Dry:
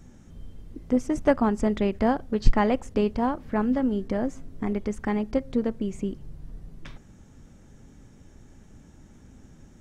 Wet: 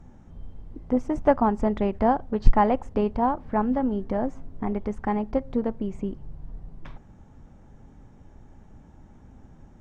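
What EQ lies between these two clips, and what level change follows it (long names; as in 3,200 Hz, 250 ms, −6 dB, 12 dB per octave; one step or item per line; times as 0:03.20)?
low-pass filter 2,300 Hz 6 dB per octave
low-shelf EQ 140 Hz +5 dB
parametric band 850 Hz +9 dB 0.99 octaves
−2.5 dB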